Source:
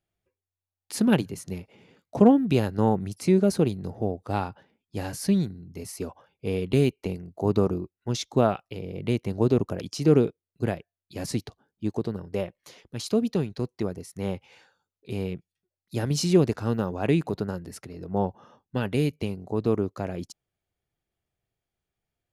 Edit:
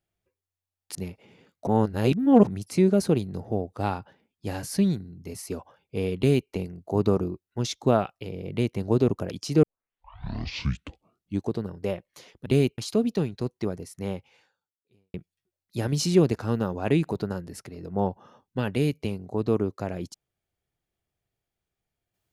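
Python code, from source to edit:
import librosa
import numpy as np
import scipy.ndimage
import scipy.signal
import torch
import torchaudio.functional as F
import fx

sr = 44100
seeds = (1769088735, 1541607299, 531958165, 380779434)

y = fx.edit(x, sr, fx.cut(start_s=0.95, length_s=0.5),
    fx.reverse_span(start_s=2.17, length_s=0.8),
    fx.duplicate(start_s=6.68, length_s=0.32, to_s=12.96),
    fx.tape_start(start_s=10.13, length_s=1.86),
    fx.fade_out_span(start_s=14.17, length_s=1.15, curve='qua'), tone=tone)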